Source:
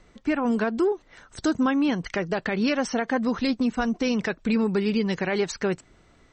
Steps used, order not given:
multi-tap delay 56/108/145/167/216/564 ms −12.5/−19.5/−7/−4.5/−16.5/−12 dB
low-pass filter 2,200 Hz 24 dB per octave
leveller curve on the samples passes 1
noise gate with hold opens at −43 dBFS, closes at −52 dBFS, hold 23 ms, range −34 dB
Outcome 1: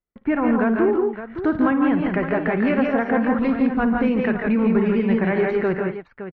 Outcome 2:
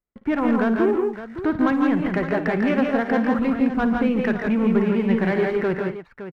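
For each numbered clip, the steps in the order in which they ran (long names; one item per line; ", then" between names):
noise gate with hold, then multi-tap delay, then leveller curve on the samples, then low-pass filter
low-pass filter, then noise gate with hold, then leveller curve on the samples, then multi-tap delay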